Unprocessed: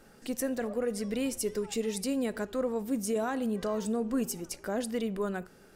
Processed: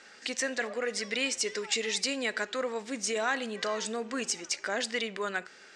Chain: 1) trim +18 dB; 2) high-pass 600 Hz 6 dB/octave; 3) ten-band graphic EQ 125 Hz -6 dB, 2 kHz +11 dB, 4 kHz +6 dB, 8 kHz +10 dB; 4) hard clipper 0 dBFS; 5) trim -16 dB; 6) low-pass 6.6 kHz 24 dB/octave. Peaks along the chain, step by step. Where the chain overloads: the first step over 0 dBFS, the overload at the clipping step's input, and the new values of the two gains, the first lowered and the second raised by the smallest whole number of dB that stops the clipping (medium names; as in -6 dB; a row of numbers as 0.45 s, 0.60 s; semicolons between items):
-2.5 dBFS, -2.5 dBFS, +6.5 dBFS, 0.0 dBFS, -16.0 dBFS, -15.5 dBFS; step 3, 6.5 dB; step 1 +11 dB, step 5 -9 dB